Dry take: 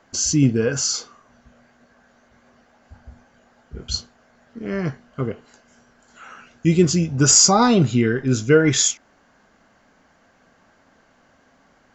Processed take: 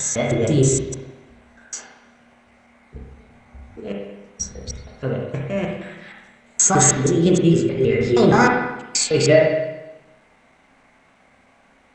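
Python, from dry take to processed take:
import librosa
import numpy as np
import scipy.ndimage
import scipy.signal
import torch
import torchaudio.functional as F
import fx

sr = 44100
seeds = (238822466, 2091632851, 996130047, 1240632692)

y = fx.block_reorder(x, sr, ms=157.0, group=6)
y = fx.formant_shift(y, sr, semitones=5)
y = fx.rev_spring(y, sr, rt60_s=1.0, pass_ms=(30, 55, 59), chirp_ms=75, drr_db=-1.0)
y = y * librosa.db_to_amplitude(-1.5)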